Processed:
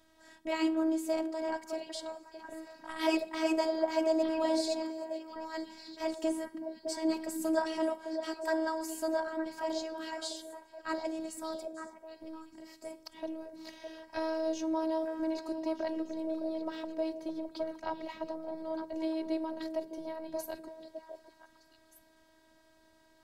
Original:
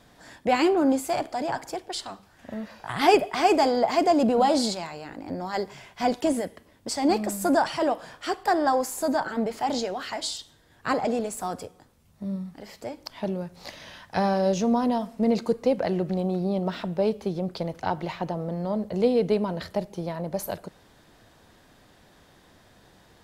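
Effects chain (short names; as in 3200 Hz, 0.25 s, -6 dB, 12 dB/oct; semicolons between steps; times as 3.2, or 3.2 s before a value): 4.82–5.36 pre-emphasis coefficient 0.8; robotiser 320 Hz; delay with a stepping band-pass 0.305 s, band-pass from 190 Hz, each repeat 1.4 oct, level -1 dB; gain -7.5 dB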